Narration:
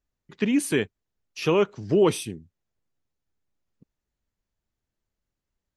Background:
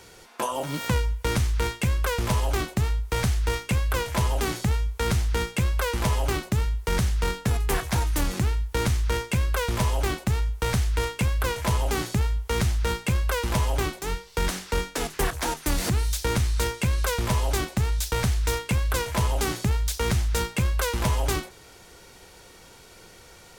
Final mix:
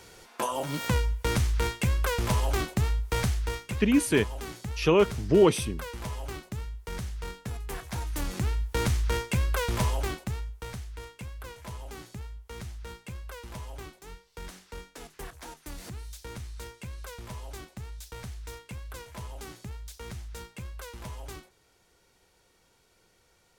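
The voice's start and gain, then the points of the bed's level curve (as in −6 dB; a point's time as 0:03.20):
3.40 s, 0.0 dB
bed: 0:03.17 −2 dB
0:03.93 −12 dB
0:07.76 −12 dB
0:08.63 −2.5 dB
0:09.85 −2.5 dB
0:10.87 −16.5 dB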